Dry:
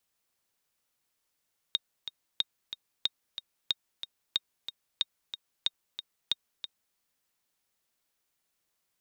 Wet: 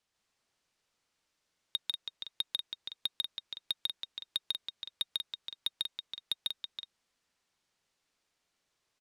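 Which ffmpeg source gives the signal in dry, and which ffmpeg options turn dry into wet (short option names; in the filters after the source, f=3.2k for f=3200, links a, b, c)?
-f lavfi -i "aevalsrc='pow(10,(-13-10.5*gte(mod(t,2*60/184),60/184))/20)*sin(2*PI*3720*mod(t,60/184))*exp(-6.91*mod(t,60/184)/0.03)':d=5.21:s=44100"
-filter_complex "[0:a]lowpass=6.6k,asoftclip=type=tanh:threshold=-21dB,asplit=2[a][b];[b]aecho=0:1:145.8|189.5:0.891|0.501[c];[a][c]amix=inputs=2:normalize=0"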